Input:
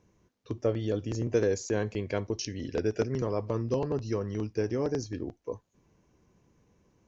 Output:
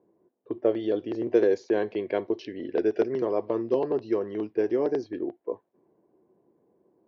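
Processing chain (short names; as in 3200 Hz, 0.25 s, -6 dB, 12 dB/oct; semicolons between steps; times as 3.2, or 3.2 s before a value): low-pass opened by the level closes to 790 Hz, open at -23.5 dBFS; speaker cabinet 300–3900 Hz, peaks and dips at 360 Hz +8 dB, 680 Hz +4 dB, 1300 Hz -5 dB, 2500 Hz -4 dB; gain +3 dB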